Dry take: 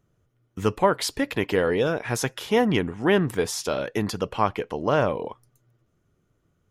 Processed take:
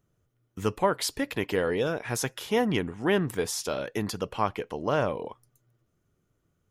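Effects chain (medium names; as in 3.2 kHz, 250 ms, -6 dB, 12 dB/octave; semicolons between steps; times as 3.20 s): treble shelf 6.5 kHz +5.5 dB; trim -4.5 dB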